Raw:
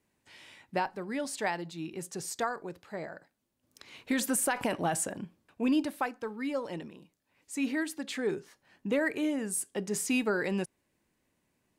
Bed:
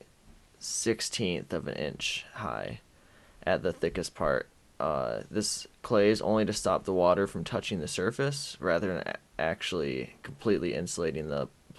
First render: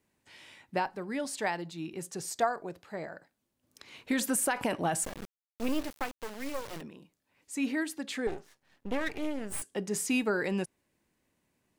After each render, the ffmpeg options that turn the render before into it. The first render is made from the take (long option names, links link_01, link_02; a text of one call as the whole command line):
ffmpeg -i in.wav -filter_complex "[0:a]asettb=1/sr,asplit=3[link_01][link_02][link_03];[link_01]atrim=end=2.294[link_04];[link_02]atrim=start=2.29:end=2.82,asetpts=PTS-STARTPTS,afade=type=in:duration=0.004:curve=qsin,afade=type=out:start_time=0.526:duration=0.004:curve=qsin,equalizer=frequency=670:width_type=o:width=0.28:gain=8.5[link_05];[link_03]atrim=start=2.816[link_06];[link_04][link_05]acrossfade=duration=0.004:curve1=hsin:curve2=qsin[link_07];[link_07][link_06]acrossfade=duration=0.004:curve1=qsin:curve2=hsin,asplit=3[link_08][link_09][link_10];[link_08]afade=type=out:start_time=5.03:duration=0.02[link_11];[link_09]acrusher=bits=4:dc=4:mix=0:aa=0.000001,afade=type=in:start_time=5.03:duration=0.02,afade=type=out:start_time=6.8:duration=0.02[link_12];[link_10]afade=type=in:start_time=6.8:duration=0.02[link_13];[link_11][link_12][link_13]amix=inputs=3:normalize=0,asettb=1/sr,asplit=3[link_14][link_15][link_16];[link_14]atrim=end=8.274[link_17];[link_15]atrim=start=8.27:end=9.62,asetpts=PTS-STARTPTS,afade=type=in:duration=0.004:curve=qsin,afade=type=out:start_time=1.346:duration=0.004:curve=qsin,aeval=exprs='max(val(0),0)':channel_layout=same[link_18];[link_16]atrim=start=9.616[link_19];[link_17][link_18]acrossfade=duration=0.004:curve1=hsin:curve2=qsin[link_20];[link_20][link_19]acrossfade=duration=0.004:curve1=qsin:curve2=hsin" out.wav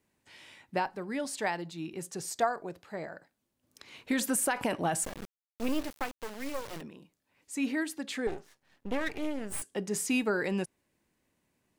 ffmpeg -i in.wav -af anull out.wav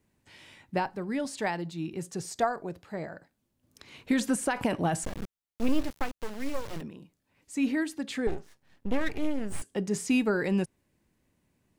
ffmpeg -i in.wav -filter_complex "[0:a]acrossover=split=8500[link_01][link_02];[link_02]acompressor=threshold=-50dB:ratio=4:attack=1:release=60[link_03];[link_01][link_03]amix=inputs=2:normalize=0,lowshelf=frequency=230:gain=10" out.wav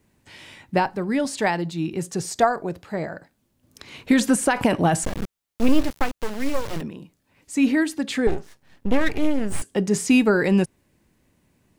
ffmpeg -i in.wav -af "volume=8.5dB" out.wav